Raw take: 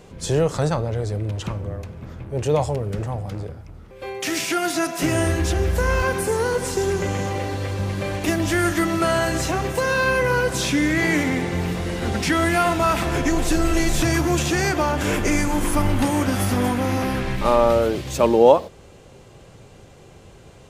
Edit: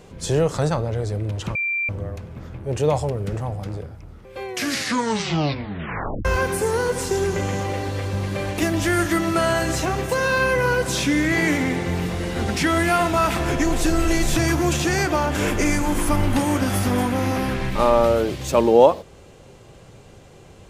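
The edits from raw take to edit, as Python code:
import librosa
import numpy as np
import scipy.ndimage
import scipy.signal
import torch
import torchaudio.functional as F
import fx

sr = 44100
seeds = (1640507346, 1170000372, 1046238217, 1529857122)

y = fx.edit(x, sr, fx.insert_tone(at_s=1.55, length_s=0.34, hz=2360.0, db=-20.5),
    fx.tape_stop(start_s=4.11, length_s=1.8), tone=tone)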